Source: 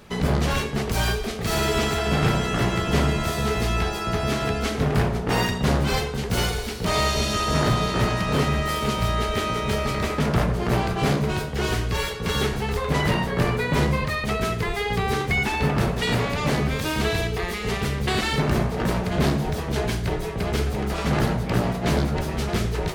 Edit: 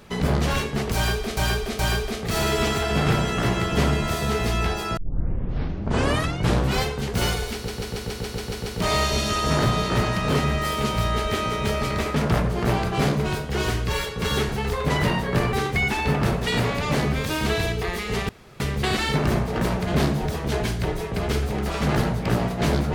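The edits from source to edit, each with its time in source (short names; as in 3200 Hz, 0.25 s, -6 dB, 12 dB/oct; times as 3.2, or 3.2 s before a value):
0.95–1.37 loop, 3 plays
4.13 tape start 1.84 s
6.7 stutter 0.14 s, 9 plays
13.57–15.08 cut
17.84 insert room tone 0.31 s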